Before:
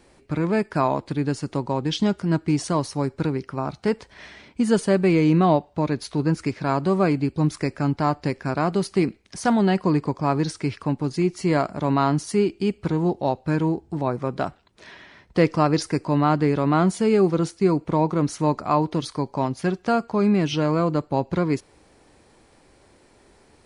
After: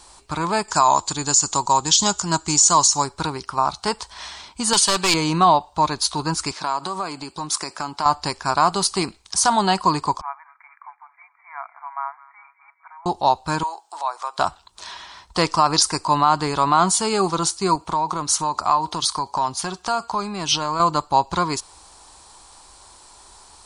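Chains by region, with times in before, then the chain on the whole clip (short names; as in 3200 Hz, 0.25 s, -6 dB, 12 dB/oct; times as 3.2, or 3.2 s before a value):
0.68–3.04 synth low-pass 7000 Hz, resonance Q 7.9 + upward compressor, threshold -40 dBFS
4.73–5.14 weighting filter D + hard clip -16 dBFS
6.51–8.06 HPF 200 Hz + compressor 10:1, threshold -24 dBFS
10.21–13.06 brick-wall FIR band-pass 640–2400 Hz + differentiator + thin delay 0.208 s, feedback 59%, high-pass 1800 Hz, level -12.5 dB
13.63–14.39 HPF 610 Hz 24 dB/oct + compressor 1.5:1, threshold -40 dBFS
17.75–20.8 HPF 55 Hz + compressor, threshold -22 dBFS
whole clip: graphic EQ 125/250/500/1000/2000/4000/8000 Hz -11/-11/-11/+11/-10/+6/+11 dB; maximiser +11.5 dB; gain -4 dB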